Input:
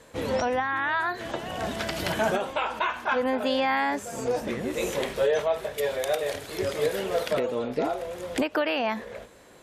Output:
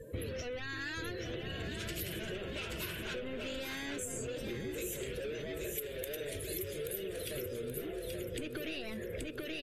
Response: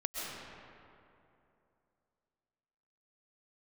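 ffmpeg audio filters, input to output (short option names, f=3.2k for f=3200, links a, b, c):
-filter_complex "[0:a]asettb=1/sr,asplit=3[a][b][c];[a]atrim=end=6.294[d];[b]atrim=start=6.29:end=8.46,asetpts=PTS-STARTPTS,afade=t=in:d=0.004:c=qsin,afade=t=out:st=2.166:d=0.004:c=qsin,equalizer=f=1.1k:t=o:w=2:g=-4.5[e];[c]atrim=start=8.456[f];[d][e]acrossfade=d=0.004:c1=hsin:c2=qsin[g];[g][f]acrossfade=d=0.004:c1=qsin:c2=hsin,asoftclip=type=tanh:threshold=-31dB,acontrast=66,afftdn=nr=30:nf=-41,firequalizer=gain_entry='entry(110,0);entry(250,-12);entry(360,-2);entry(840,-27);entry(1500,-12);entry(2600,-4);entry(4600,-8);entry(12000,14)':delay=0.05:min_phase=1,aecho=1:1:829|1658|2487|3316:0.531|0.181|0.0614|0.0209,acompressor=threshold=-47dB:ratio=8,volume=9.5dB" -ar 44100 -c:a libvorbis -b:a 48k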